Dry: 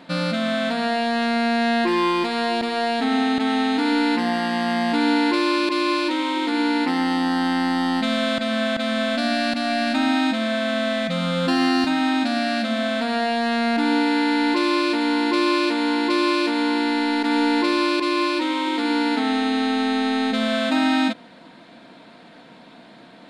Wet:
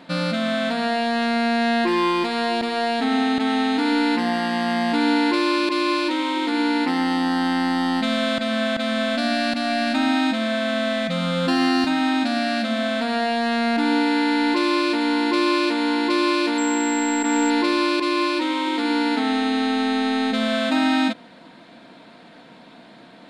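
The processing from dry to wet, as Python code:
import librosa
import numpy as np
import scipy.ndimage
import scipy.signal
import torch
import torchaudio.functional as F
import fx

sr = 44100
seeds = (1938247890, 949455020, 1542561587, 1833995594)

y = fx.pwm(x, sr, carrier_hz=7600.0, at=(16.58, 17.5))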